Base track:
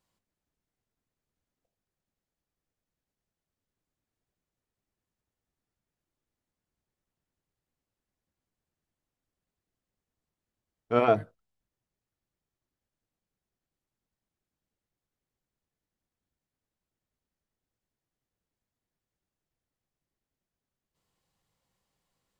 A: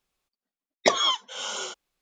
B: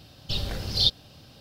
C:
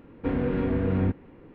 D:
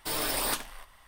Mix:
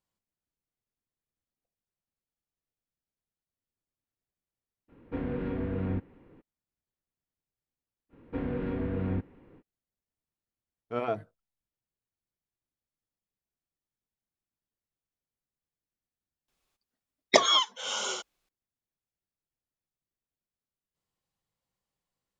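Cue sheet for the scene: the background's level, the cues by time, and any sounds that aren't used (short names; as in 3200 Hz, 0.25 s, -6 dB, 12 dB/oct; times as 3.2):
base track -8.5 dB
4.88 add C -7 dB, fades 0.02 s
8.09 add C -6.5 dB, fades 0.05 s
16.48 add A
not used: B, D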